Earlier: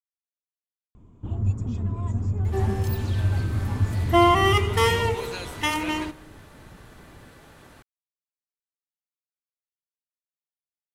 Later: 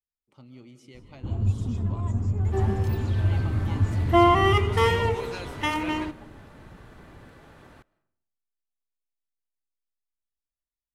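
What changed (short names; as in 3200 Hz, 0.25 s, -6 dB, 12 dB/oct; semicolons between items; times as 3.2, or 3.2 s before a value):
speech: unmuted; second sound: add high shelf 4100 Hz -11 dB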